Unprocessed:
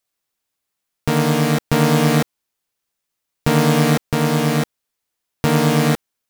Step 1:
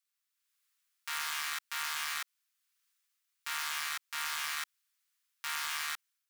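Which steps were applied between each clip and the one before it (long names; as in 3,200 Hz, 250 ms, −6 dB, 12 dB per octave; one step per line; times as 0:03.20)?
inverse Chebyshev high-pass filter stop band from 590 Hz, stop band 40 dB
automatic gain control gain up to 9 dB
brickwall limiter −13.5 dBFS, peak gain reduction 12 dB
level −7.5 dB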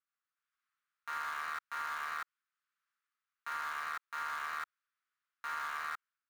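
soft clipping −31.5 dBFS, distortion −8 dB
resonant band-pass 1,300 Hz, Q 2.7
in parallel at −11.5 dB: bit reduction 7 bits
on the sum: level +4.5 dB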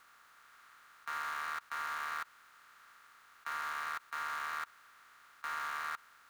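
compressor on every frequency bin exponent 0.4
level −1.5 dB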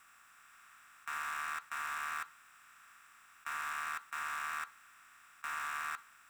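convolution reverb RT60 0.45 s, pre-delay 3 ms, DRR 12 dB
level +1 dB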